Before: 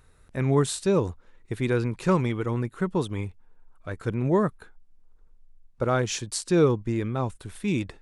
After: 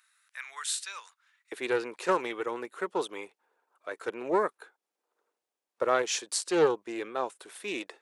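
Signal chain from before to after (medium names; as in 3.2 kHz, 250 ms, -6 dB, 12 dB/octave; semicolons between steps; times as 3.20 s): high-pass 1.4 kHz 24 dB/octave, from 1.52 s 400 Hz; loudspeaker Doppler distortion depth 0.16 ms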